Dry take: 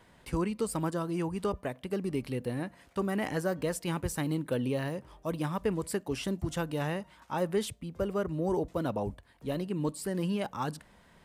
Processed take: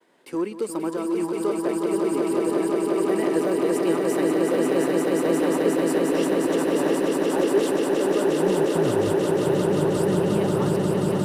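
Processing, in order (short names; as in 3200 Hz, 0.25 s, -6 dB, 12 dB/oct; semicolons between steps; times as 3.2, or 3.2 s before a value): expander -56 dBFS; high-pass sweep 340 Hz -> 100 Hz, 8.04–9.02; in parallel at -6 dB: overloaded stage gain 24 dB; on the sum: swelling echo 0.178 s, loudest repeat 8, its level -4 dB; gain -3 dB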